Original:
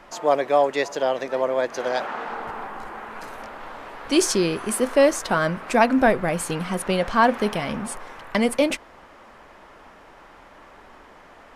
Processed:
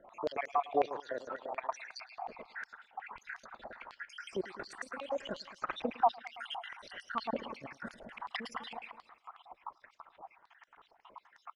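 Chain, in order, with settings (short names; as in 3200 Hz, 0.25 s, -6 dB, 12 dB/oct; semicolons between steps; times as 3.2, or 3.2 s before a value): random spectral dropouts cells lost 74%; dynamic EQ 1500 Hz, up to -5 dB, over -41 dBFS, Q 1.3; in parallel at -3 dB: compressor 10:1, threshold -32 dBFS, peak gain reduction 19 dB; on the sum: added harmonics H 7 -40 dB, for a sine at -7.5 dBFS; transient shaper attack +5 dB, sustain +9 dB; tilt -4.5 dB/oct; level quantiser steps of 23 dB; on a send: feedback echo 0.108 s, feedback 54%, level -8 dB; on the sum: stepped band-pass 11 Hz 760–5800 Hz; gain +8.5 dB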